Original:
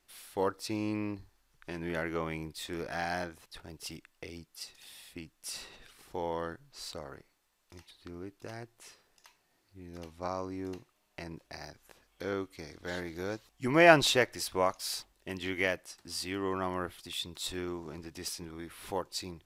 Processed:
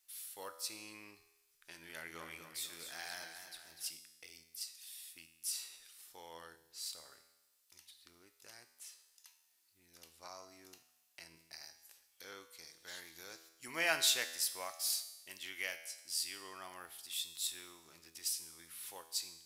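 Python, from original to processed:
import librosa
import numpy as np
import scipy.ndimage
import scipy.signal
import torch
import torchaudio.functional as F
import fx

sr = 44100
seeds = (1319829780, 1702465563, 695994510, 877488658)

y = F.preemphasis(torch.from_numpy(x), 0.97).numpy()
y = fx.comb_fb(y, sr, f0_hz=82.0, decay_s=1.0, harmonics='all', damping=0.0, mix_pct=70)
y = fx.echo_warbled(y, sr, ms=245, feedback_pct=45, rate_hz=2.8, cents=65, wet_db=-8.0, at=(1.84, 3.9))
y = y * librosa.db_to_amplitude(11.0)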